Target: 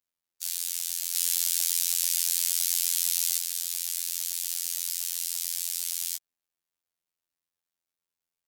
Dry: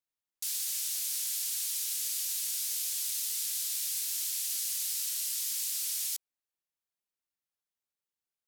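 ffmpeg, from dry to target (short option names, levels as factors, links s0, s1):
-filter_complex "[0:a]asettb=1/sr,asplit=3[s0][s1][s2];[s0]atrim=end=1.154[s3];[s1]atrim=start=1.15:end=3.38,asetpts=PTS-STARTPTS,afade=t=in:d=0.004:c=qsin,afade=t=out:st=2.226:d=0.004:c=qsin,acontrast=28[s4];[s2]atrim=start=3.376[s5];[s3][s4]acrossfade=d=0.004:c1=hsin:c2=qsin[s6];[s6][s5]acrossfade=d=0.004:c1=qsin:c2=hsin,afftfilt=real='hypot(re,im)*cos(PI*b)':imag='0':win_size=2048:overlap=0.75,volume=1.78"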